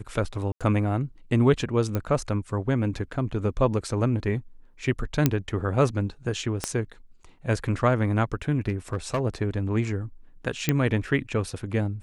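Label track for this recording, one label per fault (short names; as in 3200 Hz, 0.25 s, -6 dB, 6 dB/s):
0.520000	0.610000	gap 86 ms
1.950000	1.950000	pop -14 dBFS
5.260000	5.260000	pop -5 dBFS
6.640000	6.640000	pop -11 dBFS
8.680000	9.200000	clipped -20 dBFS
10.690000	10.690000	pop -7 dBFS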